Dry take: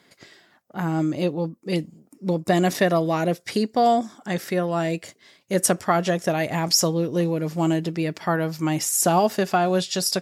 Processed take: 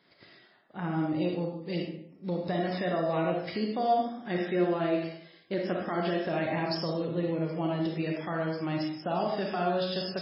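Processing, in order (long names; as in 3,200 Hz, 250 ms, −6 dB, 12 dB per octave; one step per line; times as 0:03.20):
brickwall limiter −15.5 dBFS, peak gain reduction 11 dB
0:04.16–0:06.81: hollow resonant body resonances 350/1,600/3,000 Hz, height 8 dB, ringing for 70 ms
convolution reverb RT60 0.70 s, pre-delay 10 ms, DRR 0 dB
level −8 dB
MP3 16 kbit/s 12,000 Hz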